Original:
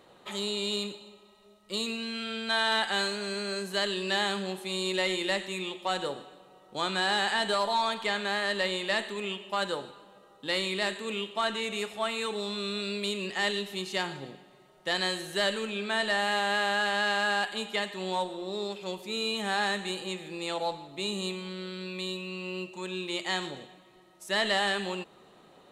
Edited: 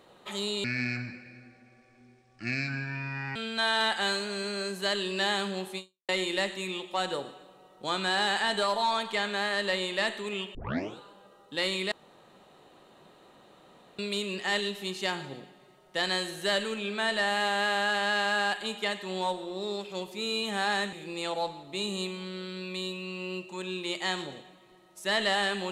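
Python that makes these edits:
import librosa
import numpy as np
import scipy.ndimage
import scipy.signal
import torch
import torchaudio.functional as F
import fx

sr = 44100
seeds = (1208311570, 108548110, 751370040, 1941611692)

y = fx.edit(x, sr, fx.speed_span(start_s=0.64, length_s=1.63, speed=0.6),
    fx.fade_out_span(start_s=4.69, length_s=0.31, curve='exp'),
    fx.tape_start(start_s=9.46, length_s=0.43),
    fx.room_tone_fill(start_s=10.83, length_s=2.07),
    fx.cut(start_s=19.84, length_s=0.33), tone=tone)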